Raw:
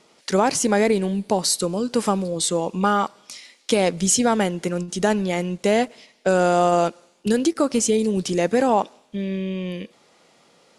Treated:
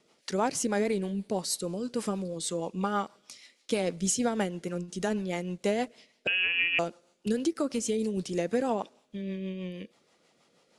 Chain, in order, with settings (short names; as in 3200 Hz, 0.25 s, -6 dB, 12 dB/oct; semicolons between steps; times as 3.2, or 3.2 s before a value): rotary speaker horn 6.3 Hz; 6.27–6.79 inverted band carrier 3100 Hz; gain -7.5 dB